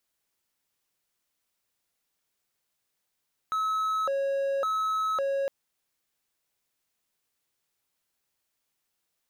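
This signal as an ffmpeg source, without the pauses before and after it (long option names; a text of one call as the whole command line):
ffmpeg -f lavfi -i "aevalsrc='0.0708*(1-4*abs(mod((920*t+370/0.9*(0.5-abs(mod(0.9*t,1)-0.5)))+0.25,1)-0.5))':duration=1.96:sample_rate=44100" out.wav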